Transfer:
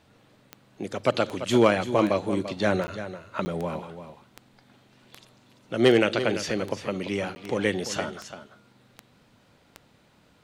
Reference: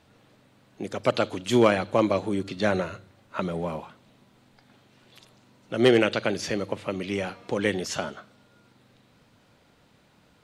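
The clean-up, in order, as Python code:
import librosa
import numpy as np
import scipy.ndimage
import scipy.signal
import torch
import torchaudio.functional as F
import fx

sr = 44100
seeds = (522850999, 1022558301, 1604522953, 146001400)

y = fx.fix_declick_ar(x, sr, threshold=10.0)
y = fx.fix_interpolate(y, sr, at_s=(2.87, 3.45, 7.35), length_ms=10.0)
y = fx.fix_echo_inverse(y, sr, delay_ms=341, level_db=-11.5)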